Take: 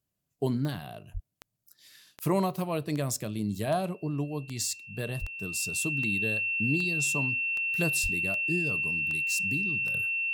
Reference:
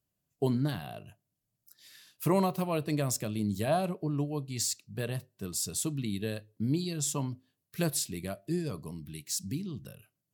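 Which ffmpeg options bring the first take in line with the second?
ffmpeg -i in.wav -filter_complex "[0:a]adeclick=threshold=4,bandreject=frequency=2700:width=30,asplit=3[link_01][link_02][link_03];[link_01]afade=type=out:start_time=1.13:duration=0.02[link_04];[link_02]highpass=frequency=140:width=0.5412,highpass=frequency=140:width=1.3066,afade=type=in:start_time=1.13:duration=0.02,afade=type=out:start_time=1.25:duration=0.02[link_05];[link_03]afade=type=in:start_time=1.25:duration=0.02[link_06];[link_04][link_05][link_06]amix=inputs=3:normalize=0,asplit=3[link_07][link_08][link_09];[link_07]afade=type=out:start_time=5.2:duration=0.02[link_10];[link_08]highpass=frequency=140:width=0.5412,highpass=frequency=140:width=1.3066,afade=type=in:start_time=5.2:duration=0.02,afade=type=out:start_time=5.32:duration=0.02[link_11];[link_09]afade=type=in:start_time=5.32:duration=0.02[link_12];[link_10][link_11][link_12]amix=inputs=3:normalize=0,asplit=3[link_13][link_14][link_15];[link_13]afade=type=out:start_time=8.02:duration=0.02[link_16];[link_14]highpass=frequency=140:width=0.5412,highpass=frequency=140:width=1.3066,afade=type=in:start_time=8.02:duration=0.02,afade=type=out:start_time=8.14:duration=0.02[link_17];[link_15]afade=type=in:start_time=8.14:duration=0.02[link_18];[link_16][link_17][link_18]amix=inputs=3:normalize=0,asetnsamples=nb_out_samples=441:pad=0,asendcmd='9.94 volume volume -11dB',volume=0dB" out.wav

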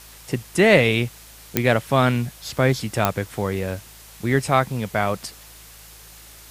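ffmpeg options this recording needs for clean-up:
ffmpeg -i in.wav -af "adeclick=threshold=4,bandreject=frequency=54.2:width_type=h:width=4,bandreject=frequency=108.4:width_type=h:width=4,bandreject=frequency=162.6:width_type=h:width=4,afwtdn=0.0063" out.wav

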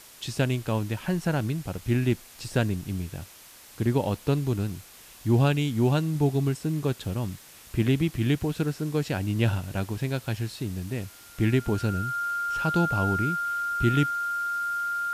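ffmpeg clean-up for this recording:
ffmpeg -i in.wav -af "adeclick=threshold=4,bandreject=frequency=1400:width=30,afftdn=noise_reduction=21:noise_floor=-49" out.wav

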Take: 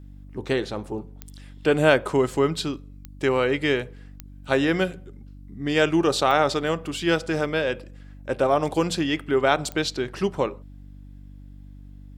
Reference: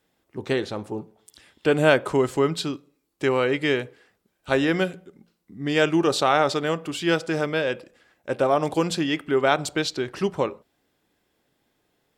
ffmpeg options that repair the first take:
ffmpeg -i in.wav -af "adeclick=threshold=4,bandreject=frequency=48.6:width_type=h:width=4,bandreject=frequency=97.2:width_type=h:width=4,bandreject=frequency=145.8:width_type=h:width=4,bandreject=frequency=194.4:width_type=h:width=4,bandreject=frequency=243:width_type=h:width=4,bandreject=frequency=291.6:width_type=h:width=4" out.wav

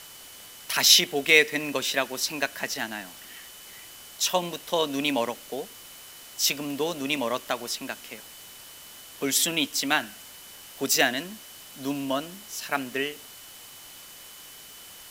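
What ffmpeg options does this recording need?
ffmpeg -i in.wav -af "adeclick=threshold=4,bandreject=frequency=3000:width=30,afwtdn=0.0056" out.wav

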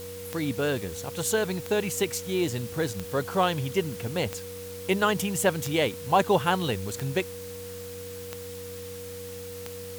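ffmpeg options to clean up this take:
ffmpeg -i in.wav -af "adeclick=threshold=4,bandreject=frequency=93.1:width_type=h:width=4,bandreject=frequency=186.2:width_type=h:width=4,bandreject=frequency=279.3:width_type=h:width=4,bandreject=frequency=480:width=30,afwtdn=0.0056" out.wav

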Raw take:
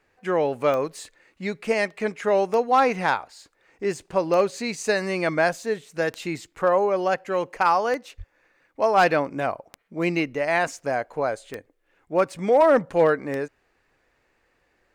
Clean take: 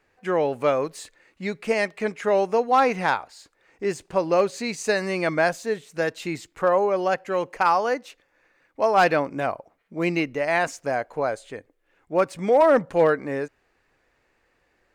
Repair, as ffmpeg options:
ffmpeg -i in.wav -filter_complex "[0:a]adeclick=threshold=4,asplit=3[link_01][link_02][link_03];[link_01]afade=type=out:start_time=8.17:duration=0.02[link_04];[link_02]highpass=frequency=140:width=0.5412,highpass=frequency=140:width=1.3066,afade=type=in:start_time=8.17:duration=0.02,afade=type=out:start_time=8.29:duration=0.02[link_05];[link_03]afade=type=in:start_time=8.29:duration=0.02[link_06];[link_04][link_05][link_06]amix=inputs=3:normalize=0" out.wav

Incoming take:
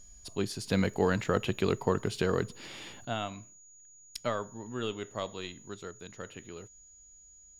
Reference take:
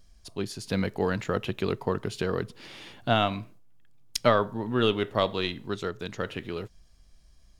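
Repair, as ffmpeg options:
ffmpeg -i in.wav -af "bandreject=frequency=6800:width=30,asetnsamples=nb_out_samples=441:pad=0,asendcmd='3.05 volume volume 11dB',volume=0dB" out.wav

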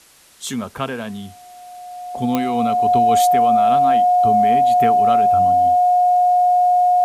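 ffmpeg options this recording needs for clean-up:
ffmpeg -i in.wav -af "adeclick=threshold=4,bandreject=frequency=720:width=30,agate=range=-21dB:threshold=-32dB" out.wav

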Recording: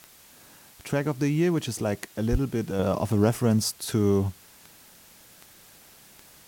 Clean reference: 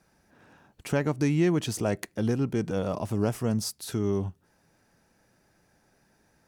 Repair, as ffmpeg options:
ffmpeg -i in.wav -filter_complex "[0:a]adeclick=threshold=4,asplit=3[link_01][link_02][link_03];[link_01]afade=type=out:start_time=2.31:duration=0.02[link_04];[link_02]highpass=frequency=140:width=0.5412,highpass=frequency=140:width=1.3066,afade=type=in:start_time=2.31:duration=0.02,afade=type=out:start_time=2.43:duration=0.02[link_05];[link_03]afade=type=in:start_time=2.43:duration=0.02[link_06];[link_04][link_05][link_06]amix=inputs=3:normalize=0,afwtdn=0.0025,asetnsamples=nb_out_samples=441:pad=0,asendcmd='2.79 volume volume -5dB',volume=0dB" out.wav

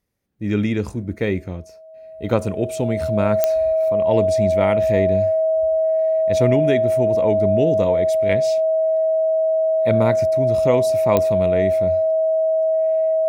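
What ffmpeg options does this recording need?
ffmpeg -i in.wav -af "adeclick=threshold=4,bandreject=frequency=640:width=30" out.wav

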